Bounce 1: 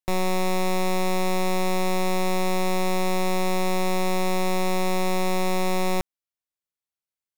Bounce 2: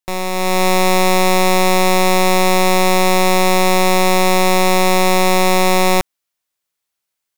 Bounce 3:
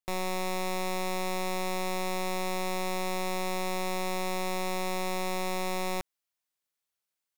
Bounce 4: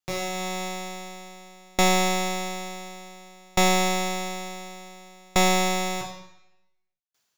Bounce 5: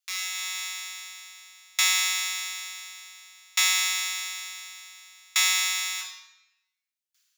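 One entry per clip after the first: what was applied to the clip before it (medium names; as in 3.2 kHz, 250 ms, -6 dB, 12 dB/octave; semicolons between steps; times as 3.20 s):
bass shelf 430 Hz -6.5 dB; level rider gain up to 9 dB; trim +5 dB
peak limiter -14.5 dBFS, peak gain reduction 10 dB; trim -8.5 dB
reverberation RT60 1.1 s, pre-delay 3 ms, DRR -5 dB; level rider gain up to 8 dB; sawtooth tremolo in dB decaying 0.56 Hz, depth 36 dB
Bessel high-pass 2.1 kHz, order 8; trim +4.5 dB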